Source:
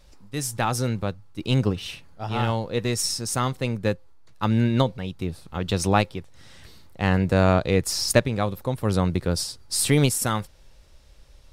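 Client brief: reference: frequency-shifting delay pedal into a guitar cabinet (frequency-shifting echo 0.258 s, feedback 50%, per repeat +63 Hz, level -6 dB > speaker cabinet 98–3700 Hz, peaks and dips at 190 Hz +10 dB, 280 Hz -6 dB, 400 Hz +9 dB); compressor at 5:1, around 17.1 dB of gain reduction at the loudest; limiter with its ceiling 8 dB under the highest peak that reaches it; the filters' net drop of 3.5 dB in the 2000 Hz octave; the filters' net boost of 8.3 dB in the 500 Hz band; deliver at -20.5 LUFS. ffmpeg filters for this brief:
-filter_complex "[0:a]equalizer=f=500:t=o:g=6,equalizer=f=2k:t=o:g=-5,acompressor=threshold=-29dB:ratio=5,alimiter=limit=-23.5dB:level=0:latency=1,asplit=7[a][b][c][d][e][f][g];[b]adelay=258,afreqshift=63,volume=-6dB[h];[c]adelay=516,afreqshift=126,volume=-12dB[i];[d]adelay=774,afreqshift=189,volume=-18dB[j];[e]adelay=1032,afreqshift=252,volume=-24.1dB[k];[f]adelay=1290,afreqshift=315,volume=-30.1dB[l];[g]adelay=1548,afreqshift=378,volume=-36.1dB[m];[a][h][i][j][k][l][m]amix=inputs=7:normalize=0,highpass=98,equalizer=f=190:t=q:w=4:g=10,equalizer=f=280:t=q:w=4:g=-6,equalizer=f=400:t=q:w=4:g=9,lowpass=f=3.7k:w=0.5412,lowpass=f=3.7k:w=1.3066,volume=11.5dB"

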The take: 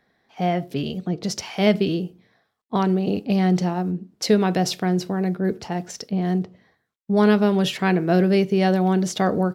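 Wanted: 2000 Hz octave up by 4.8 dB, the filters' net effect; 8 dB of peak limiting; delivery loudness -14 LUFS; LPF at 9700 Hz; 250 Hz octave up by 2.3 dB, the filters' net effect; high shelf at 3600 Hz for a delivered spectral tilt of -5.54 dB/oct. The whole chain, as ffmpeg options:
-af "lowpass=9.7k,equalizer=f=250:t=o:g=3.5,equalizer=f=2k:t=o:g=4.5,highshelf=f=3.6k:g=6,volume=7.5dB,alimiter=limit=-2.5dB:level=0:latency=1"

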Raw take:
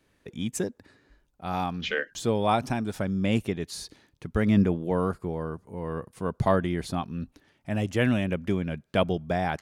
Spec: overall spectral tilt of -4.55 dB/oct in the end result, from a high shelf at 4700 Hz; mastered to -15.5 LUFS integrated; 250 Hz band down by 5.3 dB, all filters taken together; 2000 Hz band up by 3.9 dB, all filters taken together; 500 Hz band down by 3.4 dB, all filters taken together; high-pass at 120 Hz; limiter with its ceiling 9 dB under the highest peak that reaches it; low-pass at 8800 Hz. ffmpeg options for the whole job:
-af "highpass=120,lowpass=8.8k,equalizer=f=250:t=o:g=-6,equalizer=f=500:t=o:g=-3,equalizer=f=2k:t=o:g=6.5,highshelf=f=4.7k:g=-7.5,volume=17dB,alimiter=limit=0dB:level=0:latency=1"

